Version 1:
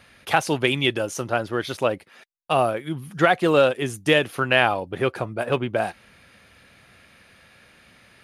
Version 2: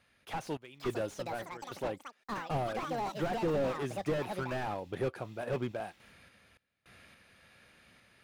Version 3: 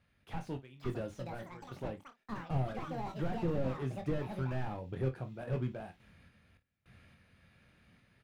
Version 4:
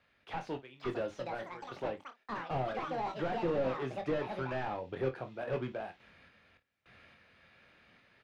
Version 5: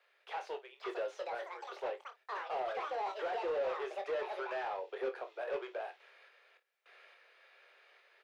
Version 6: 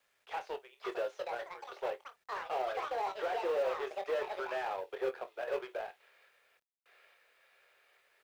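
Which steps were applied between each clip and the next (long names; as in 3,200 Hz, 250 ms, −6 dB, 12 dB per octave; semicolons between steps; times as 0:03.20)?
sample-and-hold tremolo, depth 95%; delay with pitch and tempo change per echo 620 ms, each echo +7 semitones, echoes 2, each echo −6 dB; slew-rate limiting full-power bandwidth 35 Hz; level −5 dB
bass and treble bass +12 dB, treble −5 dB; on a send: ambience of single reflections 23 ms −7.5 dB, 53 ms −14.5 dB; on the sum: level −7.5 dB
three-way crossover with the lows and the highs turned down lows −14 dB, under 320 Hz, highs −18 dB, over 5,900 Hz; level +6 dB
Butterworth high-pass 380 Hz 72 dB per octave; soft clipping −27.5 dBFS, distortion −20 dB
mu-law and A-law mismatch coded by A; level +4.5 dB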